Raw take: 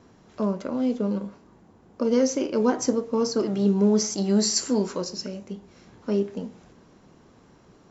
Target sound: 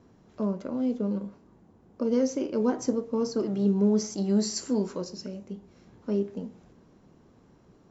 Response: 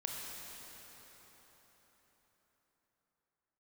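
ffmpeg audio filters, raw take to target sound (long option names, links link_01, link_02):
-af "tiltshelf=frequency=680:gain=3.5,volume=-5.5dB"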